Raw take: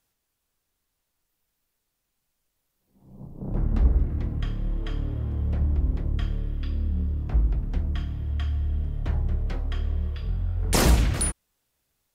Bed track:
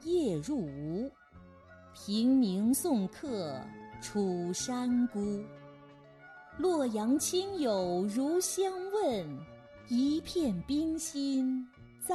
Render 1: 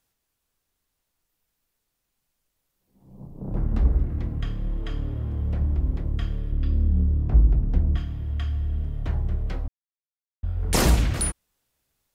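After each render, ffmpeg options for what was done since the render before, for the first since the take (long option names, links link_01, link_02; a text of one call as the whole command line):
ffmpeg -i in.wav -filter_complex "[0:a]asettb=1/sr,asplit=3[link_01][link_02][link_03];[link_01]atrim=end=6.524[link_04];[link_02]atrim=start=6.52:end=7.97,asetpts=PTS-STARTPTS,afade=type=in:duration=0.004:curve=qsin,afade=type=out:start_time=1.446:duration=0.004:curve=qsin,tiltshelf=frequency=970:gain=5.5[link_05];[link_03]atrim=start=7.966[link_06];[link_04][link_05]acrossfade=duration=0.004:curve1=hsin:curve2=qsin[link_07];[link_07][link_06]acrossfade=duration=0.004:curve1=qsin:curve2=hsin,asplit=3[link_08][link_09][link_10];[link_08]atrim=end=9.68,asetpts=PTS-STARTPTS,afade=type=out:start_time=9.676:duration=0.004:curve=hsin[link_11];[link_09]atrim=start=9.68:end=10.43,asetpts=PTS-STARTPTS,volume=0[link_12];[link_10]atrim=start=10.43,asetpts=PTS-STARTPTS,afade=type=in:duration=0.004:curve=hsin[link_13];[link_11][link_12][link_13]concat=n=3:v=0:a=1" out.wav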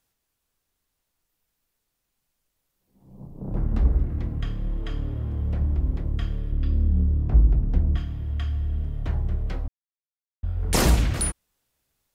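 ffmpeg -i in.wav -af anull out.wav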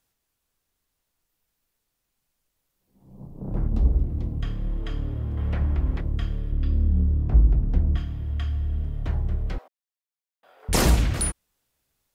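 ffmpeg -i in.wav -filter_complex "[0:a]asettb=1/sr,asplit=3[link_01][link_02][link_03];[link_01]atrim=end=3.684[link_04];[link_02]atrim=start=3.68:end=4.43,asetpts=PTS-STARTPTS,afade=type=in:duration=0.004:curve=qsin,afade=type=out:start_time=0.746:duration=0.004:curve=qsin,equalizer=frequency=1700:width_type=o:width=1.2:gain=-12.5[link_05];[link_03]atrim=start=4.426[link_06];[link_04][link_05]acrossfade=duration=0.004:curve1=hsin:curve2=qsin[link_07];[link_07][link_06]acrossfade=duration=0.004:curve1=qsin:curve2=hsin,asettb=1/sr,asplit=3[link_08][link_09][link_10];[link_08]atrim=end=5.374[link_11];[link_09]atrim=start=5.37:end=6.01,asetpts=PTS-STARTPTS,afade=type=in:duration=0.004:curve=qsin,afade=type=out:start_time=0.636:duration=0.004:curve=qsin,equalizer=frequency=1900:width_type=o:width=2.5:gain=10.5[link_12];[link_10]atrim=start=6.006[link_13];[link_11][link_12]acrossfade=duration=0.004:curve1=hsin:curve2=qsin[link_14];[link_14][link_13]acrossfade=duration=0.004:curve1=qsin:curve2=hsin,asettb=1/sr,asplit=3[link_15][link_16][link_17];[link_15]atrim=end=9.584[link_18];[link_16]atrim=start=9.58:end=10.69,asetpts=PTS-STARTPTS,afade=type=in:duration=0.004:curve=qsin,afade=type=out:start_time=1.106:duration=0.004:curve=qsin,highpass=frequency=520:width=0.5412,highpass=frequency=520:width=1.3066[link_19];[link_17]atrim=start=10.686[link_20];[link_18][link_19]acrossfade=duration=0.004:curve1=hsin:curve2=qsin[link_21];[link_21][link_20]acrossfade=duration=0.004:curve1=qsin:curve2=hsin" out.wav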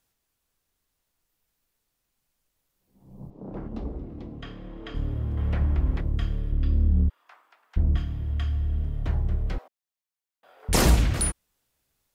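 ffmpeg -i in.wav -filter_complex "[0:a]asettb=1/sr,asplit=3[link_01][link_02][link_03];[link_01]atrim=end=3.304[link_04];[link_02]atrim=start=3.3:end=4.95,asetpts=PTS-STARTPTS,afade=type=in:duration=0.004:curve=qsin,afade=type=out:start_time=1.646:duration=0.004:curve=qsin,acrossover=split=200 5600:gain=0.158 1 0.178[link_05][link_06][link_07];[link_05][link_06][link_07]amix=inputs=3:normalize=0[link_08];[link_03]atrim=start=4.946[link_09];[link_04][link_08]acrossfade=duration=0.004:curve1=hsin:curve2=qsin[link_10];[link_10][link_09]acrossfade=duration=0.004:curve1=qsin:curve2=hsin,asplit=3[link_11][link_12][link_13];[link_11]afade=type=out:start_time=7.08:duration=0.02[link_14];[link_12]highpass=frequency=1100:width=0.5412,highpass=frequency=1100:width=1.3066,afade=type=in:start_time=7.08:duration=0.02,afade=type=out:start_time=7.76:duration=0.02[link_15];[link_13]afade=type=in:start_time=7.76:duration=0.02[link_16];[link_14][link_15][link_16]amix=inputs=3:normalize=0" out.wav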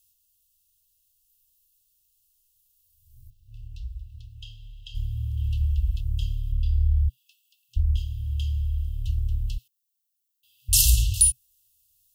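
ffmpeg -i in.wav -af "aemphasis=mode=production:type=50kf,afftfilt=real='re*(1-between(b*sr/4096,120,2600))':imag='im*(1-between(b*sr/4096,120,2600))':win_size=4096:overlap=0.75" out.wav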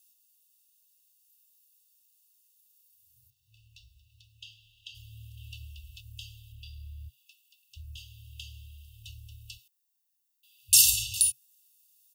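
ffmpeg -i in.wav -af "highpass=320,aecho=1:1:1.1:0.56" out.wav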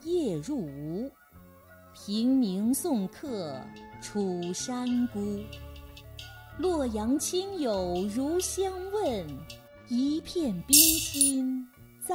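ffmpeg -i in.wav -i bed.wav -filter_complex "[1:a]volume=1.5dB[link_01];[0:a][link_01]amix=inputs=2:normalize=0" out.wav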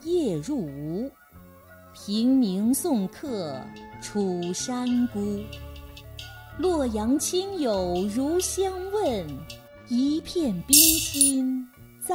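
ffmpeg -i in.wav -af "volume=4dB,alimiter=limit=-2dB:level=0:latency=1" out.wav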